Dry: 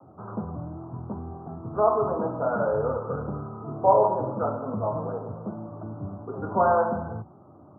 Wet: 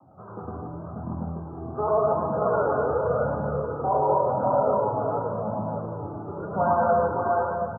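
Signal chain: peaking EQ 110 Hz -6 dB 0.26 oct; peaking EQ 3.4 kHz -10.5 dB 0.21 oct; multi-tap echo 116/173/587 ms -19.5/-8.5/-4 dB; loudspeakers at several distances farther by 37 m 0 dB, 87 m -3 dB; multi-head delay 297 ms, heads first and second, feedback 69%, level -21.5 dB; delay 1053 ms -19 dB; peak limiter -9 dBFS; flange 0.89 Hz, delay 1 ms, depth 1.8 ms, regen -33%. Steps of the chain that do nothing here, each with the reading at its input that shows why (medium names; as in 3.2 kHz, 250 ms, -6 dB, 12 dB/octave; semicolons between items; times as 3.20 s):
peaking EQ 3.4 kHz: input has nothing above 1.5 kHz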